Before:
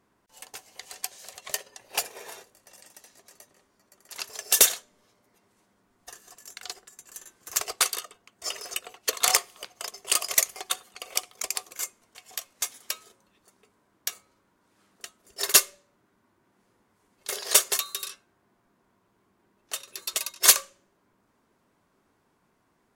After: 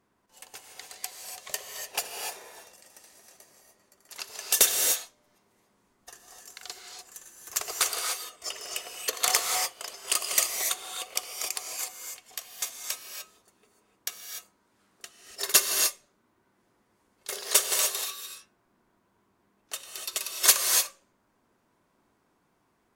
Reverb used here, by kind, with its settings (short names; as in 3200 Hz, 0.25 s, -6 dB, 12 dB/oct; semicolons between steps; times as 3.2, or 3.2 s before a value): non-linear reverb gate 0.32 s rising, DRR 2 dB; gain -3 dB